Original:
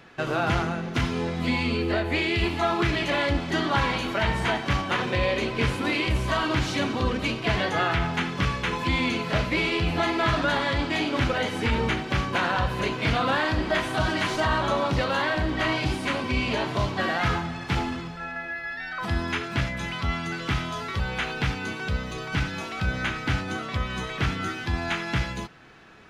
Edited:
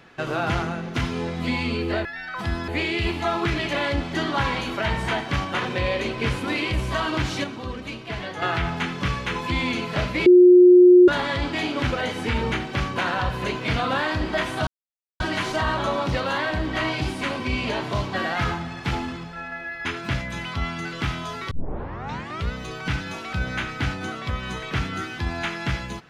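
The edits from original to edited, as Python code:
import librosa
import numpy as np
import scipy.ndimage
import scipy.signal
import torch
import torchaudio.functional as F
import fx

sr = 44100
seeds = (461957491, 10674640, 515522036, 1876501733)

y = fx.edit(x, sr, fx.clip_gain(start_s=6.81, length_s=0.98, db=-7.0),
    fx.bleep(start_s=9.63, length_s=0.82, hz=359.0, db=-7.5),
    fx.insert_silence(at_s=14.04, length_s=0.53),
    fx.move(start_s=18.69, length_s=0.63, to_s=2.05),
    fx.tape_start(start_s=20.98, length_s=1.01), tone=tone)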